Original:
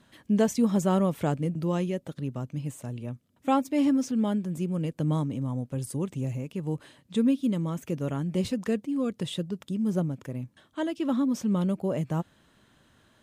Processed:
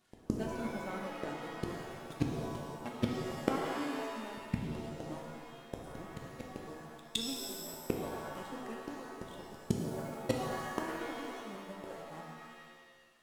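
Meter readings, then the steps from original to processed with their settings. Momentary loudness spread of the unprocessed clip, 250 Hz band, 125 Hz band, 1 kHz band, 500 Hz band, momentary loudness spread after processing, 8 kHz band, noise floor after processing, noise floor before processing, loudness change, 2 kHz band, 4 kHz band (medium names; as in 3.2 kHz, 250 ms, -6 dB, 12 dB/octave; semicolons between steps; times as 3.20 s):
11 LU, -13.5 dB, -13.0 dB, -6.0 dB, -8.5 dB, 12 LU, -5.0 dB, -58 dBFS, -64 dBFS, -11.0 dB, -0.5 dB, -1.0 dB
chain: one-bit delta coder 64 kbps, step -36.5 dBFS; hum notches 60/120/180/240/300 Hz; reverb removal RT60 1.9 s; gate -38 dBFS, range -37 dB; bass shelf 71 Hz -6 dB; flange 0.54 Hz, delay 2.7 ms, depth 1.1 ms, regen +40%; feedback comb 160 Hz, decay 0.16 s, mix 30%; inverted gate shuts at -40 dBFS, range -33 dB; pre-echo 165 ms -23 dB; waveshaping leveller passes 2; pitch-shifted reverb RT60 1.5 s, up +7 st, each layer -2 dB, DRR 1 dB; trim +17 dB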